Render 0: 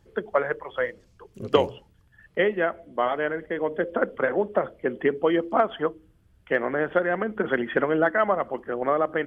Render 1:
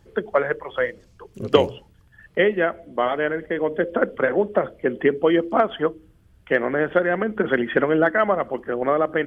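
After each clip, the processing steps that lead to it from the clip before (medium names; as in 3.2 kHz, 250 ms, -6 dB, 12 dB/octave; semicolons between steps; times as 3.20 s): dynamic bell 950 Hz, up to -4 dB, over -36 dBFS, Q 1.1; trim +5 dB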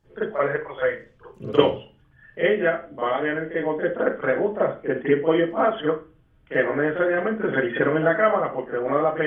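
reverberation, pre-delay 37 ms, DRR -12 dB; trim -13.5 dB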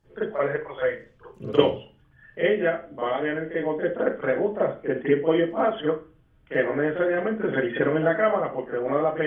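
dynamic bell 1.3 kHz, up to -4 dB, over -35 dBFS, Q 1.3; trim -1 dB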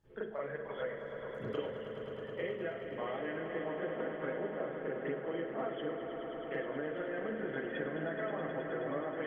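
compression, threshold -30 dBFS, peak gain reduction 18 dB; on a send: echo with a slow build-up 106 ms, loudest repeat 5, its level -10.5 dB; on the sum: trim -6.5 dB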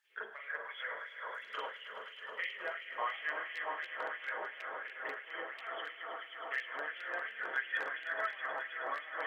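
de-hum 51.69 Hz, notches 28; wavefolder -28.5 dBFS; LFO high-pass sine 2.9 Hz 930–2600 Hz; trim +3 dB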